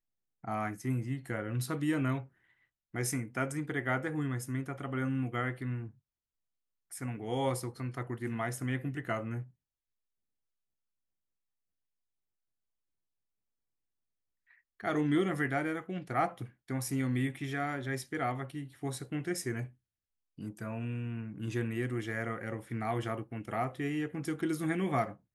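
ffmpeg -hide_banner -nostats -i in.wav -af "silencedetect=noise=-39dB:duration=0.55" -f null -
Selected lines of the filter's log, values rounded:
silence_start: 2.22
silence_end: 2.95 | silence_duration: 0.73
silence_start: 5.87
silence_end: 6.92 | silence_duration: 1.05
silence_start: 9.42
silence_end: 14.80 | silence_duration: 5.38
silence_start: 19.65
silence_end: 20.39 | silence_duration: 0.73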